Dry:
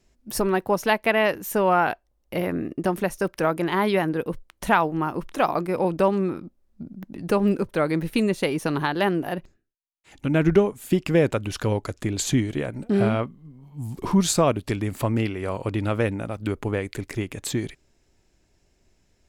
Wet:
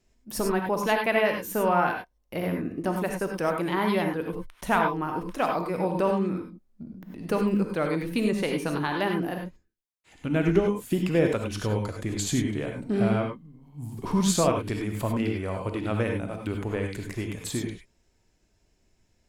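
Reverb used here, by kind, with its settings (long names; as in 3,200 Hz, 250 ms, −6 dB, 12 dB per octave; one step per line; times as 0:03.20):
reverb whose tail is shaped and stops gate 120 ms rising, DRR 2.5 dB
level −5 dB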